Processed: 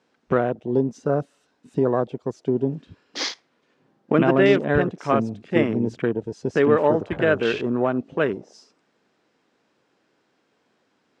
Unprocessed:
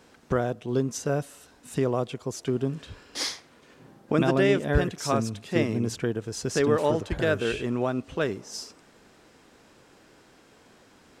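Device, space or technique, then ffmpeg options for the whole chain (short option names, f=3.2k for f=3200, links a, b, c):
over-cleaned archive recording: -af "highpass=150,lowpass=5.6k,afwtdn=0.0126,volume=5.5dB"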